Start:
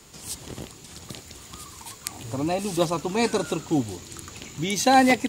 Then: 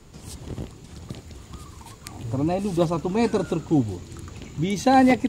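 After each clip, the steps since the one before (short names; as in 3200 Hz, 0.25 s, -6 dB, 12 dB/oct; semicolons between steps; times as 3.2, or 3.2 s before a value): tilt -2.5 dB/oct; gain -1.5 dB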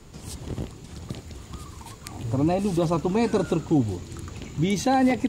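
limiter -14.5 dBFS, peak gain reduction 8.5 dB; gain +1.5 dB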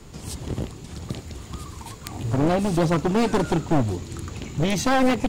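one-sided fold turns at -22.5 dBFS; gain +3.5 dB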